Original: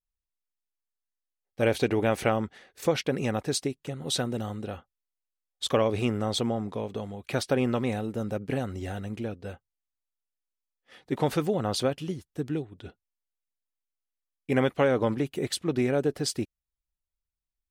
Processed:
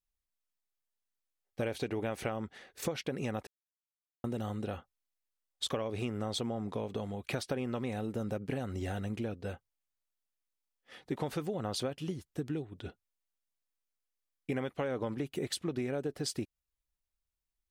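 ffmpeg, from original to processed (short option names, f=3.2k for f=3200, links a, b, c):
-filter_complex "[0:a]asplit=3[a][b][c];[a]atrim=end=3.47,asetpts=PTS-STARTPTS,afade=t=out:st=3.466:d=0.004:c=hsin[d];[b]atrim=start=3.47:end=4.24,asetpts=PTS-STARTPTS,volume=0[e];[c]atrim=start=4.24,asetpts=PTS-STARTPTS,afade=t=in:d=0.004:c=hsin[f];[d][e][f]concat=n=3:v=0:a=1,acompressor=threshold=-32dB:ratio=6"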